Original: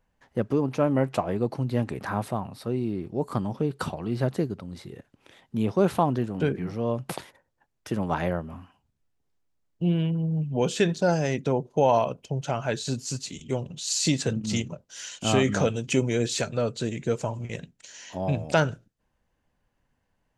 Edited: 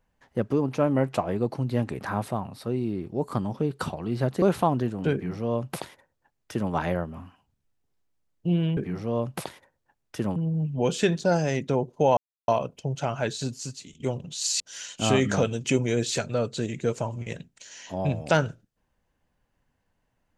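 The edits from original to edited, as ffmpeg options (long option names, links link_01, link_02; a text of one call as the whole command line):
ffmpeg -i in.wav -filter_complex "[0:a]asplit=7[link_01][link_02][link_03][link_04][link_05][link_06][link_07];[link_01]atrim=end=4.422[link_08];[link_02]atrim=start=5.778:end=10.132[link_09];[link_03]atrim=start=6.488:end=8.082[link_10];[link_04]atrim=start=10.128:end=11.94,asetpts=PTS-STARTPTS,afade=type=out:start_time=1.808:duration=0.004:curve=hsin,apad=pad_dur=0.31[link_11];[link_05]atrim=start=11.94:end=13.46,asetpts=PTS-STARTPTS,afade=type=in:duration=0.004:curve=hsin,afade=type=out:start_time=0.82:duration=0.7:silence=0.281838[link_12];[link_06]atrim=start=13.46:end=14.062,asetpts=PTS-STARTPTS,afade=type=in:duration=0.004:curve=hsin:silence=0.281838[link_13];[link_07]atrim=start=14.828[link_14];[link_08][link_09]acrossfade=duration=0.004:curve1=hsin:curve2=hsin[link_15];[link_15][link_10]acrossfade=duration=0.004:curve1=hsin:curve2=hsin[link_16];[link_11][link_12][link_13]concat=n=3:v=0:a=1[link_17];[link_16][link_17]acrossfade=duration=0.004:curve1=hsin:curve2=hsin[link_18];[link_18][link_14]acrossfade=duration=0.004:curve1=hsin:curve2=hsin" out.wav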